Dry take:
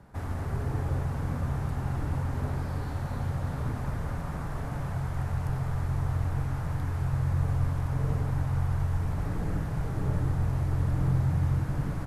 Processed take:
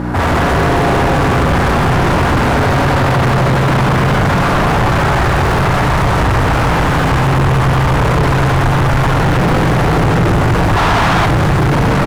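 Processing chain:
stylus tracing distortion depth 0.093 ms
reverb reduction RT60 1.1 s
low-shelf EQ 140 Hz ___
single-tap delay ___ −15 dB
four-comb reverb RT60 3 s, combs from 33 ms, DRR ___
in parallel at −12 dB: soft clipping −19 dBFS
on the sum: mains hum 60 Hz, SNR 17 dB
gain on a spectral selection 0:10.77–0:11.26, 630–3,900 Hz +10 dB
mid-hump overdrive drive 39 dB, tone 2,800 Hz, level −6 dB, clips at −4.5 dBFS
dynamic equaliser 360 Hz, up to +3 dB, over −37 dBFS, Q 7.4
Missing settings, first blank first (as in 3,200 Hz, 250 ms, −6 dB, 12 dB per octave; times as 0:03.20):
+10 dB, 426 ms, −7 dB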